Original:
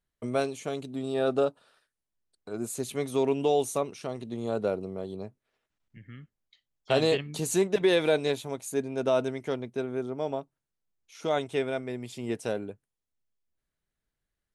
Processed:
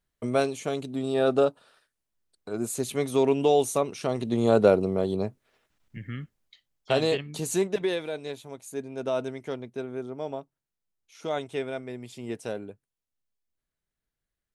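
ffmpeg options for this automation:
-af "volume=7.5,afade=t=in:st=3.83:d=0.56:silence=0.473151,afade=t=out:st=6.16:d=0.83:silence=0.298538,afade=t=out:st=7.66:d=0.41:silence=0.334965,afade=t=in:st=8.07:d=1.2:silence=0.421697"

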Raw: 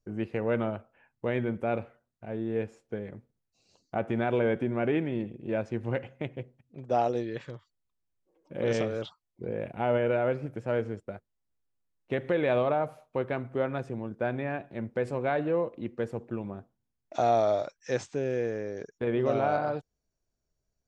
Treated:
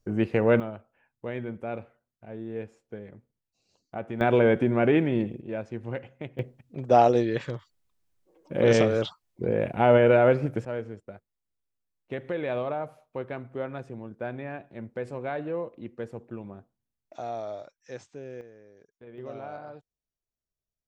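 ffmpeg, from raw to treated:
-af "asetnsamples=n=441:p=0,asendcmd='0.6 volume volume -4.5dB;4.21 volume volume 6dB;5.41 volume volume -3dB;6.39 volume volume 8dB;10.65 volume volume -4dB;17.14 volume volume -10.5dB;18.41 volume volume -18.5dB;19.18 volume volume -12.5dB',volume=2.37"

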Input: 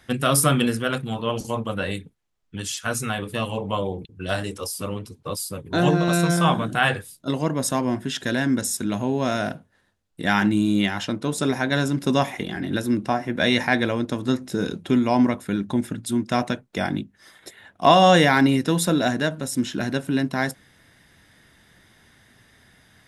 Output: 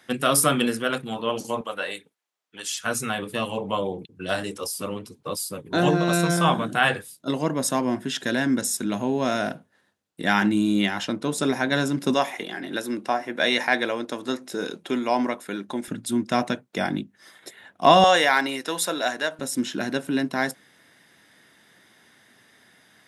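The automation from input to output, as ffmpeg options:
-af "asetnsamples=n=441:p=0,asendcmd='1.61 highpass f 530;2.81 highpass f 170;12.14 highpass f 370;15.88 highpass f 160;18.04 highpass f 560;19.39 highpass f 220',highpass=220"

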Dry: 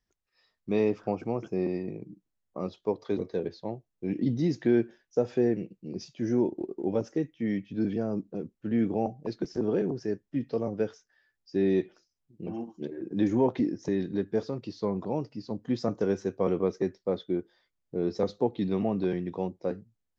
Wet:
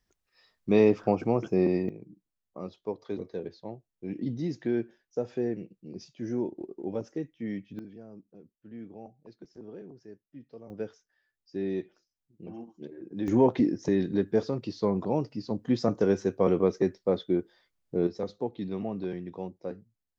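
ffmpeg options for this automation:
-af "asetnsamples=n=441:p=0,asendcmd='1.89 volume volume -5dB;7.79 volume volume -17dB;10.7 volume volume -6.5dB;13.28 volume volume 3dB;18.07 volume volume -5.5dB',volume=1.78"

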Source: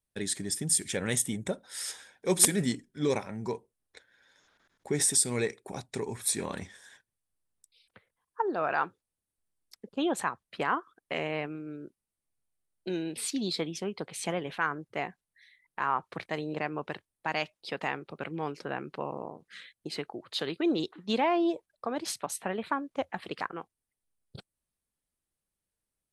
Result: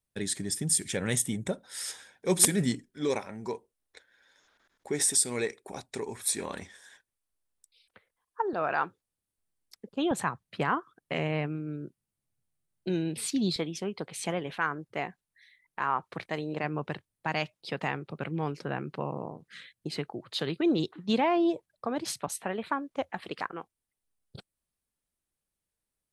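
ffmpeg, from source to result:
-af "asetnsamples=n=441:p=0,asendcmd='2.86 equalizer g -7;8.53 equalizer g 2;10.11 equalizer g 11.5;13.56 equalizer g 2;16.64 equalizer g 9;22.28 equalizer g -0.5',equalizer=f=130:t=o:w=1.4:g=3"

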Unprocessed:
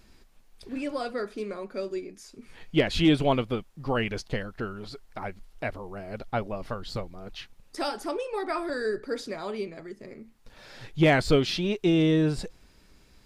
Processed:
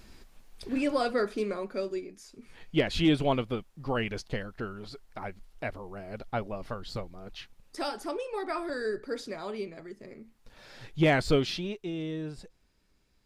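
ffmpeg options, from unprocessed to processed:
-af "volume=1.58,afade=t=out:st=1.27:d=0.83:silence=0.446684,afade=t=out:st=11.43:d=0.42:silence=0.316228"

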